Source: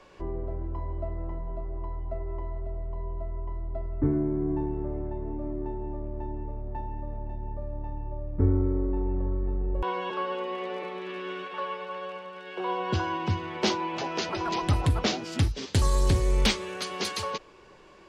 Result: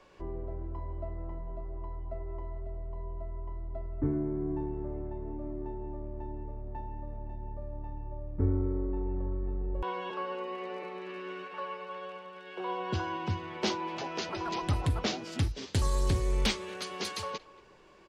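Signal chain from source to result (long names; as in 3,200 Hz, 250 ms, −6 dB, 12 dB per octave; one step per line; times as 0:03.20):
0:10.14–0:11.88: notch filter 3,400 Hz, Q 6.6
far-end echo of a speakerphone 230 ms, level −20 dB
level −5 dB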